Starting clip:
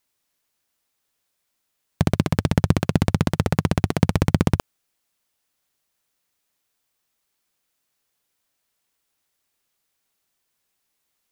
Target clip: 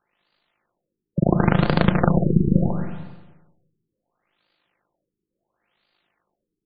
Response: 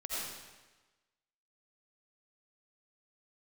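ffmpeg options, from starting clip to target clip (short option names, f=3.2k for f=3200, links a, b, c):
-filter_complex "[0:a]lowshelf=f=150:g=-9,aecho=1:1:5.7:0.49,acrossover=split=600|5600[a][b][c];[a]alimiter=limit=-17dB:level=0:latency=1:release=182[d];[d][b][c]amix=inputs=3:normalize=0,aeval=exprs='0.473*sin(PI/2*2.82*val(0)/0.473)':c=same,atempo=1.7,tremolo=f=52:d=0.667,asplit=2[e][f];[1:a]atrim=start_sample=2205,lowshelf=f=470:g=7.5[g];[f][g]afir=irnorm=-1:irlink=0,volume=-10.5dB[h];[e][h]amix=inputs=2:normalize=0,afftfilt=real='re*lt(b*sr/1024,450*pow(4900/450,0.5+0.5*sin(2*PI*0.72*pts/sr)))':imag='im*lt(b*sr/1024,450*pow(4900/450,0.5+0.5*sin(2*PI*0.72*pts/sr)))':win_size=1024:overlap=0.75"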